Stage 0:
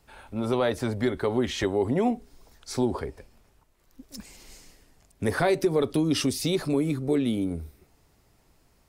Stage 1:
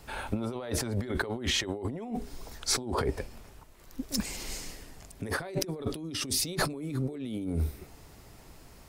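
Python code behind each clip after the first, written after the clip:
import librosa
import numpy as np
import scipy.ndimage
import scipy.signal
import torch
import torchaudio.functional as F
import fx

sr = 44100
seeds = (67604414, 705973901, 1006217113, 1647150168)

y = fx.over_compress(x, sr, threshold_db=-36.0, ratio=-1.0)
y = y * librosa.db_to_amplitude(2.5)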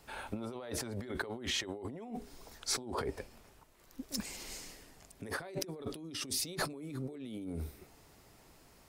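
y = fx.low_shelf(x, sr, hz=130.0, db=-8.0)
y = y * librosa.db_to_amplitude(-6.0)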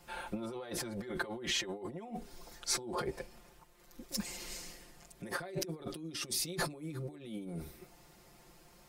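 y = x + 0.95 * np.pad(x, (int(5.7 * sr / 1000.0), 0))[:len(x)]
y = y * librosa.db_to_amplitude(-2.0)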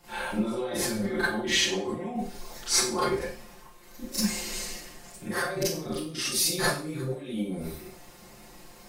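y = fx.rev_schroeder(x, sr, rt60_s=0.42, comb_ms=29, drr_db=-10.0)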